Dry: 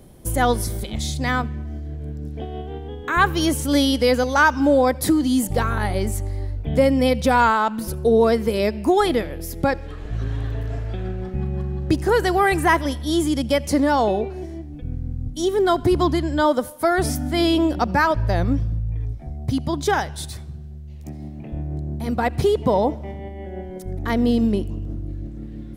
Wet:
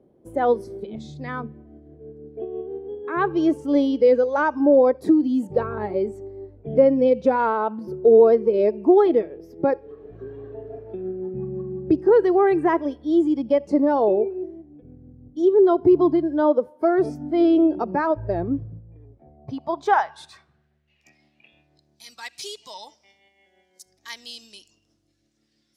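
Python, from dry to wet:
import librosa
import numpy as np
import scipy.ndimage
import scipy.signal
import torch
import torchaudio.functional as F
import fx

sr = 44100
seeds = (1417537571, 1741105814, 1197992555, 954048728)

y = fx.filter_sweep_bandpass(x, sr, from_hz=400.0, to_hz=5800.0, start_s=19.03, end_s=22.1, q=1.5)
y = fx.noise_reduce_blind(y, sr, reduce_db=10)
y = fx.dynamic_eq(y, sr, hz=220.0, q=1.4, threshold_db=-36.0, ratio=4.0, max_db=-4)
y = F.gain(torch.from_numpy(y), 5.5).numpy()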